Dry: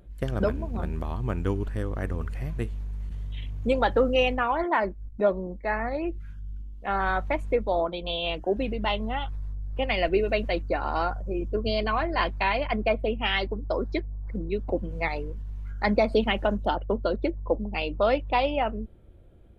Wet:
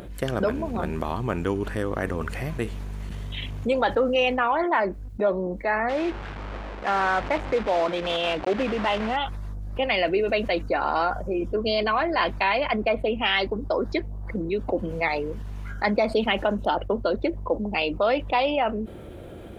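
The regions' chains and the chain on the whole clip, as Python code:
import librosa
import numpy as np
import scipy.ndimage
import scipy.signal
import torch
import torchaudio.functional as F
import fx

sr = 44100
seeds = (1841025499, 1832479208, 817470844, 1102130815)

y = fx.chain(x, sr, fx.block_float(bits=3),
    fx.lowpass(hz=2600.0, slope=12), at=(5.89, 9.17))
y = fx.highpass(y, sr, hz=290.0, slope=6)
y = fx.env_flatten(y, sr, amount_pct=50)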